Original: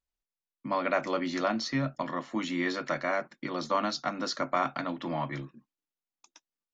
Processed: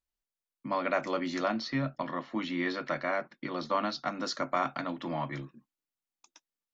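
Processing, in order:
0:01.54–0:04.06: low-pass filter 5,000 Hz 24 dB per octave
level −1.5 dB

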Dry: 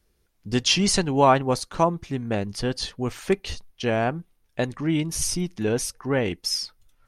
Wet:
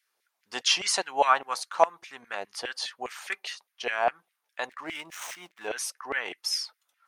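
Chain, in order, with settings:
0:04.68–0:05.68: running median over 9 samples
auto-filter high-pass saw down 4.9 Hz 610–2,200 Hz
level −3.5 dB

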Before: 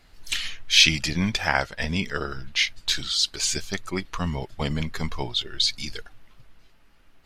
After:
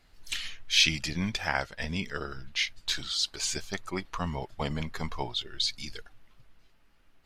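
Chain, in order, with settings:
0:02.75–0:05.35: dynamic equaliser 840 Hz, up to +6 dB, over −43 dBFS, Q 0.87
level −6.5 dB

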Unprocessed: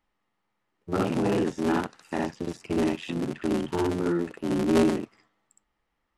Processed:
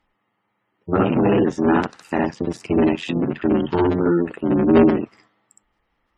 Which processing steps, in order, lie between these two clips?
gate on every frequency bin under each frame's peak −30 dB strong
harmonic generator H 5 −45 dB, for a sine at −11 dBFS
level +8 dB

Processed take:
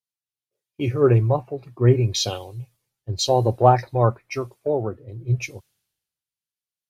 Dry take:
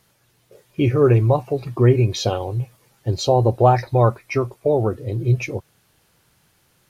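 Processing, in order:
multiband upward and downward expander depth 100%
level −4.5 dB

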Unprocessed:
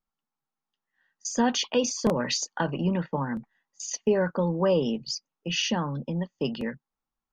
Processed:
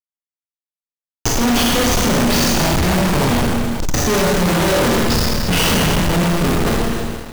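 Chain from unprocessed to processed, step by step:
comparator with hysteresis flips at −26.5 dBFS
four-comb reverb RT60 1.6 s, combs from 26 ms, DRR −4.5 dB
leveller curve on the samples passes 5

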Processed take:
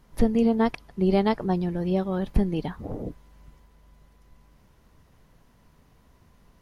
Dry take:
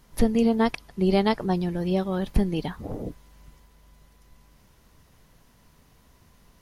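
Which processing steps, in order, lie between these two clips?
high-shelf EQ 2,600 Hz −8 dB

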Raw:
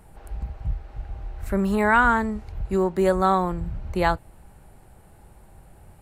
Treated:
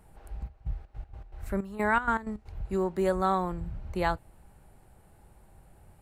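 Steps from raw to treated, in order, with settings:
0:00.47–0:02.64: gate pattern "x.xxx..xx.x." 159 BPM −12 dB
level −6.5 dB

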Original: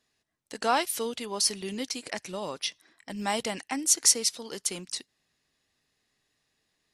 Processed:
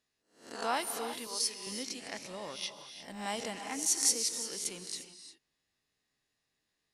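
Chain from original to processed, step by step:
peak hold with a rise ahead of every peak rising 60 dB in 0.45 s
0:01.27–0:01.67: high-pass filter 660 Hz 6 dB per octave
reverb whose tail is shaped and stops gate 380 ms rising, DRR 8.5 dB
level −9 dB

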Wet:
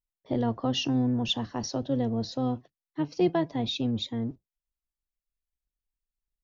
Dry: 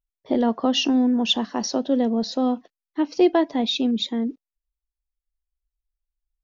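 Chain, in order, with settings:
sub-octave generator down 1 octave, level −4 dB
level −7.5 dB

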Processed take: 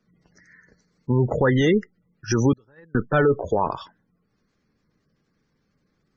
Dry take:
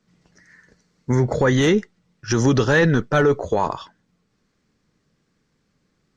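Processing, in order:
gate on every frequency bin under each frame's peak −25 dB strong
0:02.53–0:02.95: noise gate −10 dBFS, range −37 dB
level −1.5 dB

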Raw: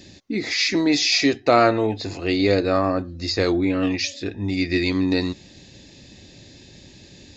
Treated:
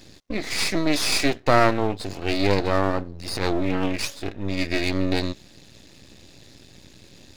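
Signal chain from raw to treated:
half-wave rectification
0:03.13–0:03.80: transient designer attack −11 dB, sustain +7 dB
level +1 dB

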